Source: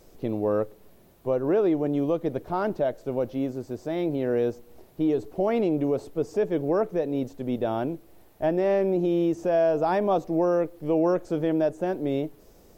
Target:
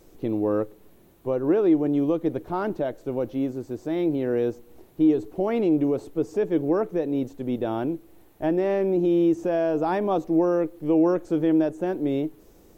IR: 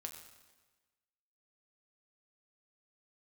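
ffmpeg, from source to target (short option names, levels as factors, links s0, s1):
-af "equalizer=f=315:t=o:w=0.33:g=6,equalizer=f=630:t=o:w=0.33:g=-4,equalizer=f=5000:t=o:w=0.33:g=-4"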